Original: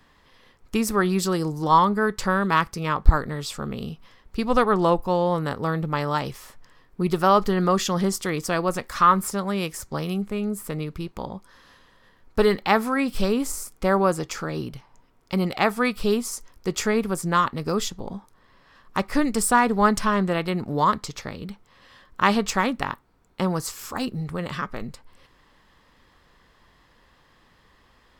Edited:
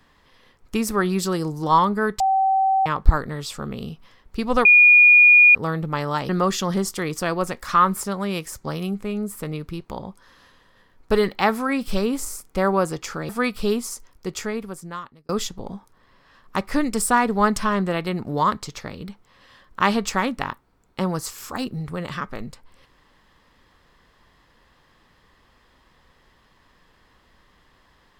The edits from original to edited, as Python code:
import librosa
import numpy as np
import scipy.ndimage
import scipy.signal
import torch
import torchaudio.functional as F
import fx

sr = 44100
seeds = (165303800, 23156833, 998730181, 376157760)

y = fx.edit(x, sr, fx.bleep(start_s=2.2, length_s=0.66, hz=770.0, db=-15.5),
    fx.bleep(start_s=4.65, length_s=0.9, hz=2440.0, db=-8.0),
    fx.cut(start_s=6.29, length_s=1.27),
    fx.cut(start_s=14.56, length_s=1.14),
    fx.fade_out_span(start_s=16.23, length_s=1.47), tone=tone)